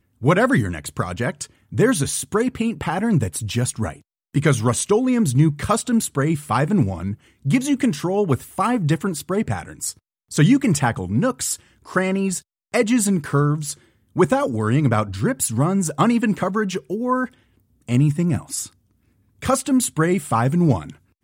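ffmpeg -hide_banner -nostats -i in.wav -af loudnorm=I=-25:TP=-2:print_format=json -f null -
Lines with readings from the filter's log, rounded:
"input_i" : "-20.8",
"input_tp" : "-4.6",
"input_lra" : "2.1",
"input_thresh" : "-31.2",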